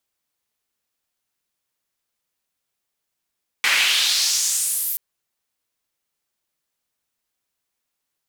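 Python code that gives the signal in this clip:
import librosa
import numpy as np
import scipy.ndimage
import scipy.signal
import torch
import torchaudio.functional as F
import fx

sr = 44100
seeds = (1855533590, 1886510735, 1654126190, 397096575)

y = fx.riser_noise(sr, seeds[0], length_s=1.33, colour='white', kind='bandpass', start_hz=2000.0, end_hz=14000.0, q=2.2, swell_db=-12.5, law='exponential')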